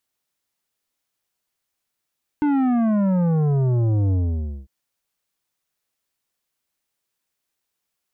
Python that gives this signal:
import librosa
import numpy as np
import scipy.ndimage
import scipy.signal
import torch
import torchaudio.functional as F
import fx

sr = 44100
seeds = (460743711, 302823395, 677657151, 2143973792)

y = fx.sub_drop(sr, level_db=-17.5, start_hz=300.0, length_s=2.25, drive_db=10.5, fade_s=0.55, end_hz=65.0)